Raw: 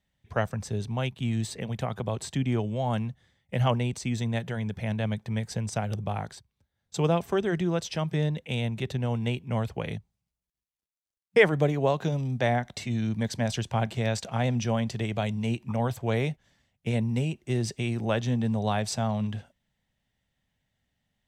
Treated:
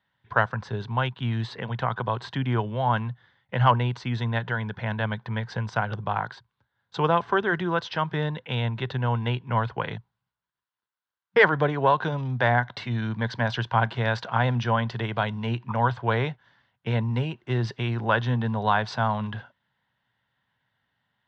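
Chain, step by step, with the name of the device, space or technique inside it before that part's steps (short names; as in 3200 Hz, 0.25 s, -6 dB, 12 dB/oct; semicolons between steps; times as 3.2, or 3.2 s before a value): overdrive pedal into a guitar cabinet (overdrive pedal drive 10 dB, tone 5400 Hz, clips at -6 dBFS; speaker cabinet 75–4100 Hz, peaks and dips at 120 Hz +9 dB, 630 Hz -3 dB, 990 Hz +10 dB, 1500 Hz +9 dB, 2400 Hz -6 dB)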